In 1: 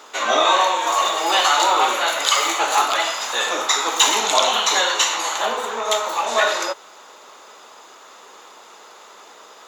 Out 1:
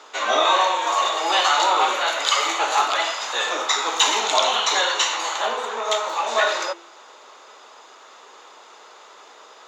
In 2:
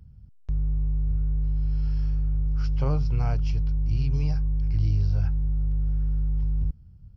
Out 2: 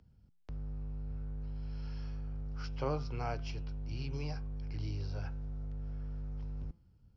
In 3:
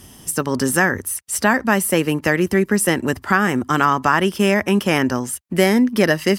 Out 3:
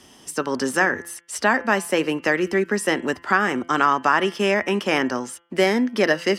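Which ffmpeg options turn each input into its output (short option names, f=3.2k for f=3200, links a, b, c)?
-filter_complex "[0:a]acrossover=split=240 7500:gain=0.178 1 0.141[a][b][c];[a][b][c]amix=inputs=3:normalize=0,bandreject=f=170.9:t=h:w=4,bandreject=f=341.8:t=h:w=4,bandreject=f=512.7:t=h:w=4,bandreject=f=683.6:t=h:w=4,bandreject=f=854.5:t=h:w=4,bandreject=f=1.0254k:t=h:w=4,bandreject=f=1.1963k:t=h:w=4,bandreject=f=1.3672k:t=h:w=4,bandreject=f=1.5381k:t=h:w=4,bandreject=f=1.709k:t=h:w=4,bandreject=f=1.8799k:t=h:w=4,bandreject=f=2.0508k:t=h:w=4,bandreject=f=2.2217k:t=h:w=4,bandreject=f=2.3926k:t=h:w=4,bandreject=f=2.5635k:t=h:w=4,bandreject=f=2.7344k:t=h:w=4,bandreject=f=2.9053k:t=h:w=4,bandreject=f=3.0762k:t=h:w=4,bandreject=f=3.2471k:t=h:w=4,bandreject=f=3.418k:t=h:w=4,volume=-1.5dB"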